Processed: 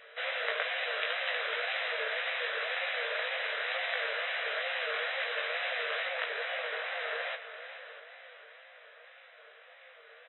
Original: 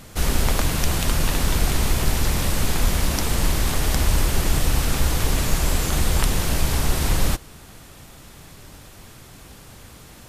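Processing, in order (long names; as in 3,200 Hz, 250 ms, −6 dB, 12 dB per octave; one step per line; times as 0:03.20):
stylus tracing distortion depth 0.061 ms
Chebyshev high-pass with heavy ripple 470 Hz, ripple 9 dB
high-shelf EQ 3,000 Hz −3.5 dB, from 0:06.07 −10.5 dB
double-tracking delay 18 ms −3.5 dB
echo machine with several playback heads 213 ms, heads second and third, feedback 46%, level −14 dB
tape wow and flutter 140 cents
linear-phase brick-wall low-pass 4,000 Hz
parametric band 860 Hz −10 dB 0.75 octaves
repeating echo 312 ms, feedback 45%, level −21 dB
floating-point word with a short mantissa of 8 bits
level +2 dB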